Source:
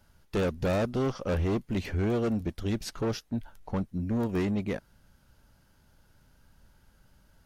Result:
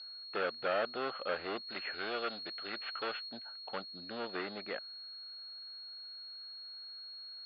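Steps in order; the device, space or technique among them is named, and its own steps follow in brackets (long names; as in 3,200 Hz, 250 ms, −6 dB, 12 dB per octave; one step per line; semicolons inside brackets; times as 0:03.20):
toy sound module (linearly interpolated sample-rate reduction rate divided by 4×; switching amplifier with a slow clock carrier 4,300 Hz; loudspeaker in its box 790–4,200 Hz, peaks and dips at 970 Hz −8 dB, 1,400 Hz +5 dB, 2,800 Hz +5 dB)
0:01.67–0:03.29: tilt shelving filter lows −4 dB
level +2.5 dB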